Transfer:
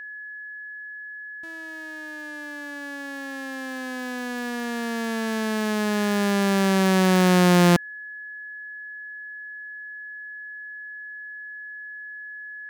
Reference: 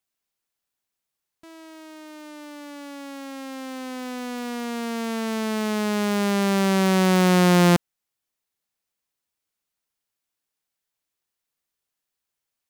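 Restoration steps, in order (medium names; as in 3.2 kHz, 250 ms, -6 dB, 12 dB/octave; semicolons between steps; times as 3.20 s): band-stop 1.7 kHz, Q 30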